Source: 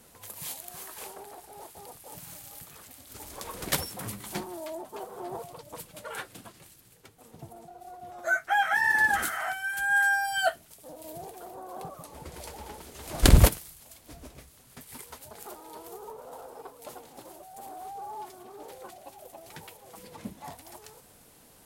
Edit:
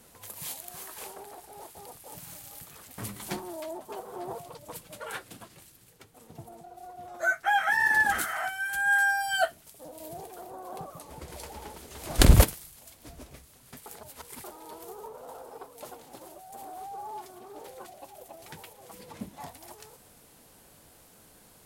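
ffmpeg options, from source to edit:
-filter_complex "[0:a]asplit=4[a][b][c][d];[a]atrim=end=2.982[e];[b]atrim=start=4.018:end=14.902[f];[c]atrim=start=14.898:end=15.482,asetpts=PTS-STARTPTS,areverse[g];[d]atrim=start=15.478[h];[e][f]acrossfade=d=0.004:c1=hsin:c2=hsin[i];[i][g]acrossfade=d=0.004:c1=hsin:c2=hsin[j];[j][h]acrossfade=d=0.004:c1=hsin:c2=hsin"

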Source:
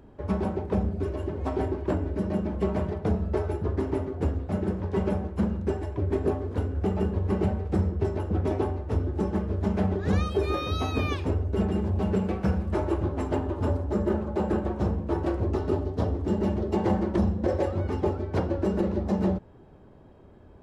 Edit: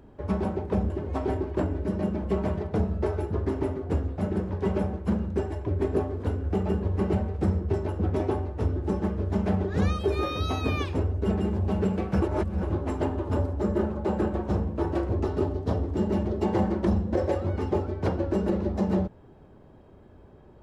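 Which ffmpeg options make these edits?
-filter_complex "[0:a]asplit=4[a][b][c][d];[a]atrim=end=0.902[e];[b]atrim=start=1.208:end=12.532[f];[c]atrim=start=12.528:end=12.942,asetpts=PTS-STARTPTS,areverse[g];[d]atrim=start=12.938[h];[e][f]acrossfade=d=0.004:c1=hsin:c2=hsin[i];[i][g]acrossfade=d=0.004:c1=hsin:c2=hsin[j];[j][h]acrossfade=d=0.004:c1=hsin:c2=hsin"

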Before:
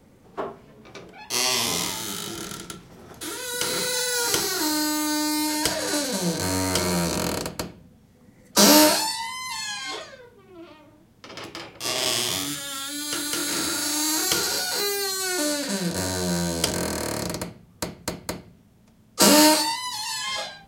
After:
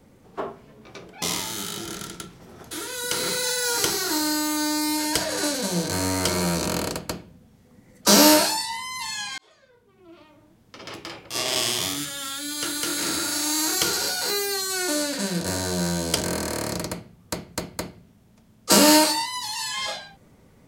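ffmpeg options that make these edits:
-filter_complex "[0:a]asplit=3[a][b][c];[a]atrim=end=1.222[d];[b]atrim=start=1.718:end=9.88,asetpts=PTS-STARTPTS,afade=t=out:st=8.158:d=0.004:c=hsin[e];[c]atrim=start=9.88,asetpts=PTS-STARTPTS,afade=t=in:d=1.86:c=qsin[f];[e][f]concat=n=2:v=0:a=1[g];[d][g]acrossfade=d=0.004:c1=hsin:c2=hsin"

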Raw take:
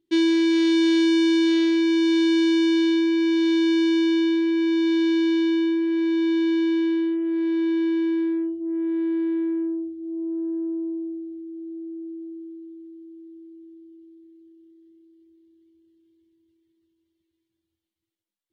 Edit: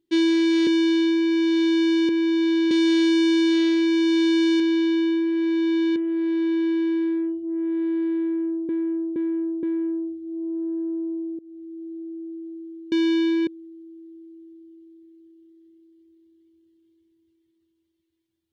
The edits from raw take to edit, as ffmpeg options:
-filter_complex "[0:a]asplit=12[a][b][c][d][e][f][g][h][i][j][k][l];[a]atrim=end=0.672[m];[b]atrim=start=2.558:end=3.982[n];[c]atrim=start=4.528:end=5.152[o];[d]atrim=start=0.668:end=2.562[p];[e]atrim=start=5.148:end=6.512[q];[f]atrim=start=7.128:end=9.862[r];[g]atrim=start=9.388:end=9.862[s];[h]atrim=start=9.388:end=9.862[t];[i]atrim=start=9.388:end=11.15,asetpts=PTS-STARTPTS,afade=t=out:st=1.758:d=0.004:c=hsin:silence=0.0749894[u];[j]atrim=start=11.15:end=12.682,asetpts=PTS-STARTPTS,afade=t=in:d=0.46:c=qsin:silence=0.0749894[v];[k]atrim=start=3.978:end=4.532[w];[l]atrim=start=12.678[x];[m][n]acrossfade=d=0.004:c1=hsin:c2=hsin[y];[y][o]acrossfade=d=0.004:c1=hsin:c2=hsin[z];[z][p]acrossfade=d=0.004:c1=hsin:c2=hsin[aa];[aa][q]acrossfade=d=0.004:c1=hsin:c2=hsin[ab];[ab][r]acrossfade=d=0.004:c1=hsin:c2=hsin[ac];[ac][s]acrossfade=d=0.004:c1=hsin:c2=hsin[ad];[ad][t]acrossfade=d=0.004:c1=hsin:c2=hsin[ae];[u][v]concat=n=2:v=0:a=1[af];[ae][af]acrossfade=d=0.004:c1=hsin:c2=hsin[ag];[ag][w]acrossfade=d=0.004:c1=hsin:c2=hsin[ah];[ah][x]acrossfade=d=0.004:c1=hsin:c2=hsin"

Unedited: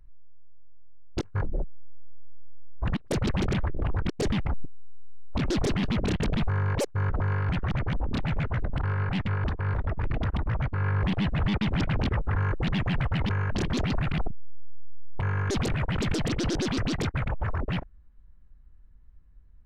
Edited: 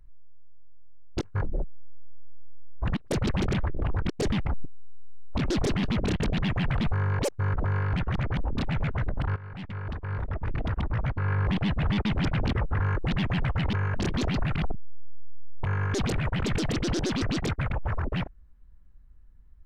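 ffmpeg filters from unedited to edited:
-filter_complex "[0:a]asplit=4[a][b][c][d];[a]atrim=end=6.342[e];[b]atrim=start=12.638:end=13.082[f];[c]atrim=start=6.338:end=8.92,asetpts=PTS-STARTPTS,afade=t=out:st=2.578:d=0.004:c=hsin:silence=0.149624[g];[d]atrim=start=8.92,asetpts=PTS-STARTPTS,afade=t=in:d=1.95:c=qsin:silence=0.149624[h];[e][f]acrossfade=d=0.004:c1=hsin:c2=hsin[i];[g][h]concat=n=2:v=0:a=1[j];[i][j]acrossfade=d=0.004:c1=hsin:c2=hsin"

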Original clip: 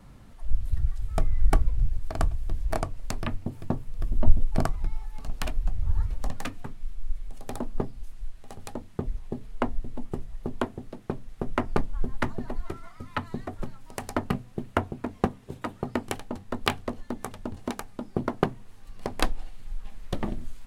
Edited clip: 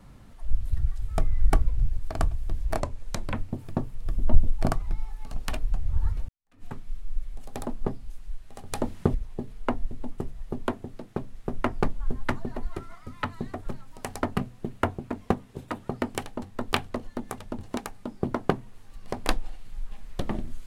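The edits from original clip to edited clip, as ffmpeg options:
-filter_complex "[0:a]asplit=6[a][b][c][d][e][f];[a]atrim=end=2.804[g];[b]atrim=start=2.8:end=3.28,asetpts=PTS-STARTPTS,asetrate=38808,aresample=44100[h];[c]atrim=start=3.276:end=6.22,asetpts=PTS-STARTPTS,afade=t=out:st=2.94:d=0.004:c=hsin[i];[d]atrim=start=6.22:end=8.662,asetpts=PTS-STARTPTS,afade=t=in:d=0.35:c=exp[j];[e]atrim=start=8.658:end=9.082,asetpts=PTS-STARTPTS,volume=8dB[k];[f]atrim=start=9.078[l];[g][h]acrossfade=d=0.004:c1=hsin:c2=hsin[m];[i][j]concat=n=2:v=0:a=1[n];[m][n]acrossfade=d=0.004:c1=hsin:c2=hsin[o];[o][k]acrossfade=d=0.004:c1=hsin:c2=hsin[p];[p][l]acrossfade=d=0.004:c1=hsin:c2=hsin"

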